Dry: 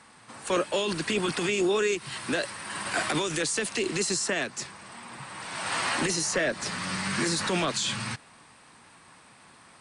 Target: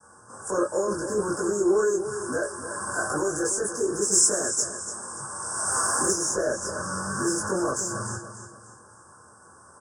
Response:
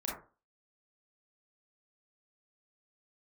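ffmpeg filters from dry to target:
-filter_complex "[0:a]aecho=1:1:291|582|873|1164:0.266|0.101|0.0384|0.0146,asoftclip=type=tanh:threshold=-20dB,asuperstop=centerf=2900:order=20:qfactor=0.83,equalizer=f=7.9k:t=o:w=0.7:g=7,agate=range=-33dB:threshold=-55dB:ratio=3:detection=peak,asettb=1/sr,asplit=3[a][b][c];[a]atrim=end=4.114[d];[b]atrim=start=4.11:end=6.11,asetpts=PTS-STARTPTS,afade=t=in:d=0.004:c=qsin,afade=t=out:st=1.996:d=0.004:c=qsin,highshelf=f=4k:g=10.5[e];[c]atrim=start=6.106[f];[d][e]acrossfade=d=0.004:c1=hsin:c2=qsin[g];[g][f]acrossfade=d=0.004:c1=qsin:c2=hsin[h];[1:a]atrim=start_sample=2205,atrim=end_sample=3969,asetrate=79380,aresample=44100[i];[h][i]afir=irnorm=-1:irlink=0,volume=4.5dB"

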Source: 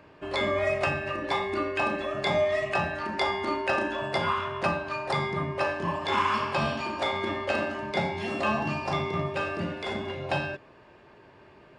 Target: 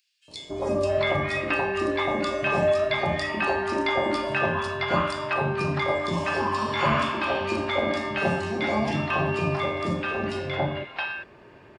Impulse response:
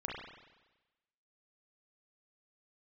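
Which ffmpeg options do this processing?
-filter_complex "[0:a]acrossover=split=960|4000[a][b][c];[a]adelay=280[d];[b]adelay=670[e];[d][e][c]amix=inputs=3:normalize=0,volume=4.5dB"

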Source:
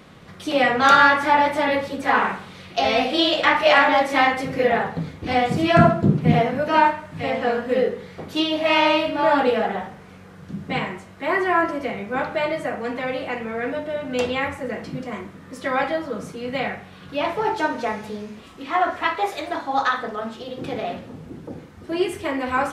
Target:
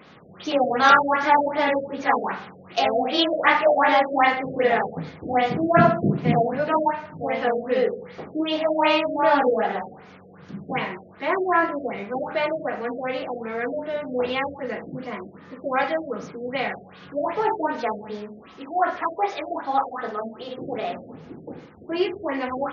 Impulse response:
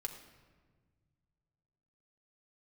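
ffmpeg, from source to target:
-filter_complex "[0:a]highpass=f=230:p=1,asplit=2[a][b];[1:a]atrim=start_sample=2205[c];[b][c]afir=irnorm=-1:irlink=0,volume=-13.5dB[d];[a][d]amix=inputs=2:normalize=0,afftfilt=real='re*lt(b*sr/1024,710*pow(7100/710,0.5+0.5*sin(2*PI*2.6*pts/sr)))':imag='im*lt(b*sr/1024,710*pow(7100/710,0.5+0.5*sin(2*PI*2.6*pts/sr)))':win_size=1024:overlap=0.75,volume=-1dB"

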